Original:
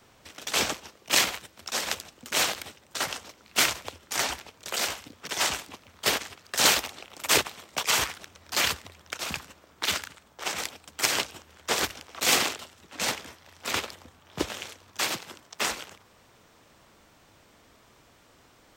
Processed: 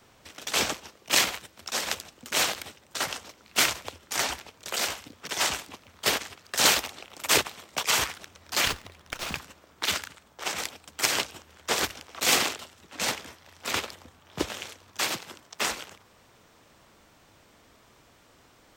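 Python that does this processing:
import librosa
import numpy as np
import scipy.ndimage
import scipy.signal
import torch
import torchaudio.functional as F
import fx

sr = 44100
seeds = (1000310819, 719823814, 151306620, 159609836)

y = fx.running_max(x, sr, window=3, at=(8.67, 9.37))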